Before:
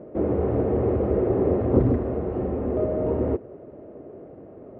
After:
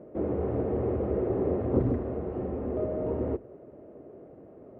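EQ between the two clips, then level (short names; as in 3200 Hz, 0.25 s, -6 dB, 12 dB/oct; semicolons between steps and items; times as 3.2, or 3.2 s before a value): notches 50/100 Hz; -6.0 dB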